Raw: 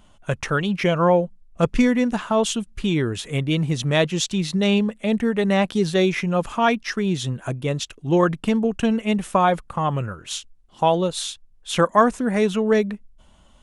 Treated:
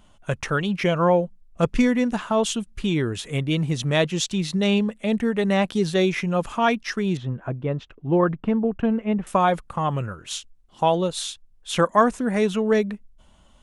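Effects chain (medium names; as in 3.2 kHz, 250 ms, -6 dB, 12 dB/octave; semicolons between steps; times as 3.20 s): 7.17–9.27 s: low-pass 1.6 kHz 12 dB/octave; trim -1.5 dB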